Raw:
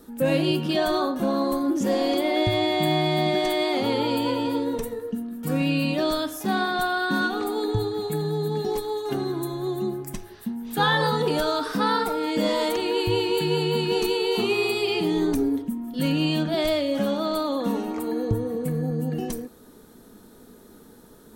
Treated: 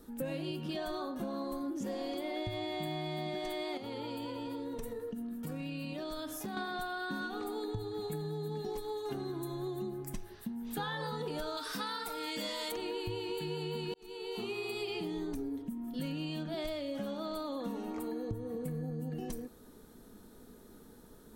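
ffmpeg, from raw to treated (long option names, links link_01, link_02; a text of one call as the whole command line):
ffmpeg -i in.wav -filter_complex "[0:a]asettb=1/sr,asplit=3[link_01][link_02][link_03];[link_01]atrim=end=3.774[link_04];[link_02]atrim=start=3.77:end=6.57,asetpts=PTS-STARTPTS,afade=type=in:duration=0.004:curve=qsin,afade=type=out:start_time=2.796:duration=0.004:curve=qsin,acompressor=threshold=-29dB:ratio=6:attack=3.2:release=140:knee=1:detection=peak[link_05];[link_03]atrim=start=6.566[link_06];[link_04][link_05]acrossfade=duration=0.004:curve1=hsin:curve2=qsin[link_07];[link_07][link_06]acrossfade=duration=0.004:curve1=qsin:curve2=hsin,asettb=1/sr,asplit=3[link_08][link_09][link_10];[link_08]atrim=end=11.574[link_11];[link_09]atrim=start=11.57:end=12.72,asetpts=PTS-STARTPTS,afade=type=in:duration=0.004:curve=qsin,afade=type=out:start_time=1.146:duration=0.004:curve=qsin,tiltshelf=frequency=1300:gain=-7.5[link_12];[link_10]atrim=start=12.716[link_13];[link_11][link_12]acrossfade=duration=0.004:curve1=hsin:curve2=qsin[link_14];[link_14][link_13]acrossfade=duration=0.004:curve1=qsin:curve2=hsin,asplit=2[link_15][link_16];[link_15]atrim=end=13.94,asetpts=PTS-STARTPTS,afade=type=out:start_time=13.936:duration=0.004:curve=hsin[link_17];[link_16]atrim=start=13.94,asetpts=PTS-STARTPTS,afade=type=in:duration=0.99[link_18];[link_17][link_18]concat=n=2:v=0:a=1,lowshelf=frequency=73:gain=8,acompressor=threshold=-28dB:ratio=6,volume=-7dB" out.wav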